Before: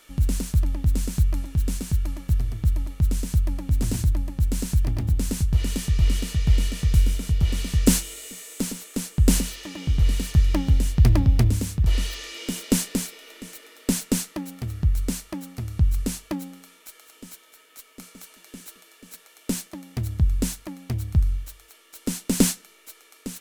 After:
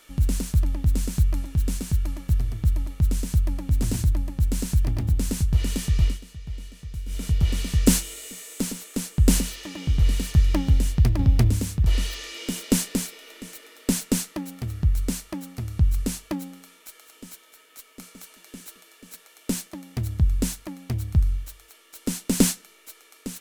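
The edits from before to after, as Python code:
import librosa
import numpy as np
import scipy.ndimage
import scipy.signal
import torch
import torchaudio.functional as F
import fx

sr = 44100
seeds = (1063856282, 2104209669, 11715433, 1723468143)

y = fx.edit(x, sr, fx.fade_down_up(start_s=6.02, length_s=1.21, db=-15.5, fade_s=0.17),
    fx.fade_out_to(start_s=10.92, length_s=0.27, floor_db=-7.5), tone=tone)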